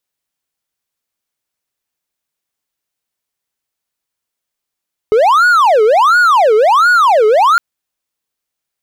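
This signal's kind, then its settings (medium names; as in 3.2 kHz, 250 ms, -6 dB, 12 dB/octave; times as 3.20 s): siren wail 423–1460 Hz 1.4 per s triangle -4 dBFS 2.46 s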